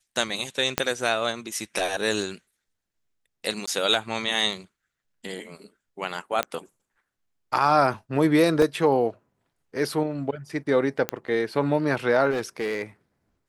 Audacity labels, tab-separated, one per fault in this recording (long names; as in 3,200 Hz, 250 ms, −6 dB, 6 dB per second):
0.780000	0.780000	click −5 dBFS
3.660000	3.670000	drop-out 15 ms
6.430000	6.430000	click −10 dBFS
8.620000	8.620000	drop-out 2.9 ms
11.090000	11.090000	click −9 dBFS
12.300000	12.820000	clipping −22.5 dBFS